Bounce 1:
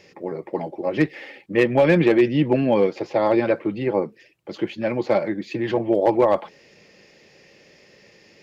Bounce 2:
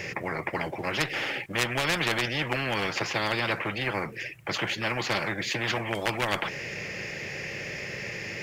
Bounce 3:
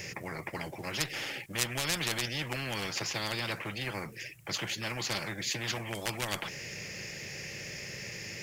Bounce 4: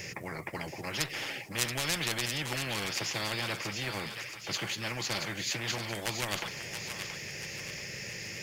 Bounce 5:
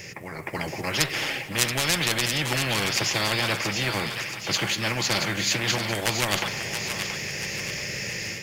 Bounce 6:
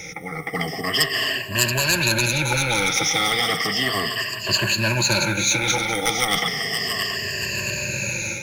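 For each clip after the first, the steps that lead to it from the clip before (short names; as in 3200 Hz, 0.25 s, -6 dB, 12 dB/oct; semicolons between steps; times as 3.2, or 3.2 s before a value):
graphic EQ 125/250/500/1000/2000/4000 Hz +10/-8/-3/-4/+8/-9 dB; spectral compressor 4:1; gain -4 dB
tone controls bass +5 dB, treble +14 dB; gain -9 dB
thinning echo 0.678 s, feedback 50%, high-pass 930 Hz, level -6.5 dB
AGC gain up to 8 dB; on a send at -12 dB: reverb RT60 2.8 s, pre-delay 40 ms; on the sum: gain +1 dB
moving spectral ripple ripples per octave 1.4, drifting -0.34 Hz, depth 22 dB; in parallel at -4 dB: overloaded stage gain 18.5 dB; on the sum: gain -4 dB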